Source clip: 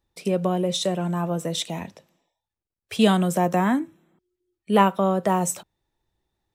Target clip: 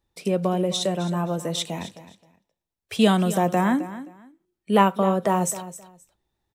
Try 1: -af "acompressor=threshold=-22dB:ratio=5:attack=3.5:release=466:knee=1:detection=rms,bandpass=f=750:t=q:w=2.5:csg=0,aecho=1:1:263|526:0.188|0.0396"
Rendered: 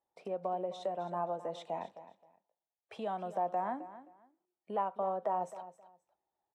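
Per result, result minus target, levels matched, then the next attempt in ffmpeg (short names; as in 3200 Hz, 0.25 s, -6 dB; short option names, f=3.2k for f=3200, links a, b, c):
compressor: peak gain reduction +12 dB; 1000 Hz band +4.5 dB
-af "bandpass=f=750:t=q:w=2.5:csg=0,aecho=1:1:263|526:0.188|0.0396"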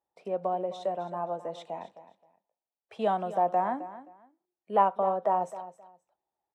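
1000 Hz band +4.5 dB
-af "aecho=1:1:263|526:0.188|0.0396"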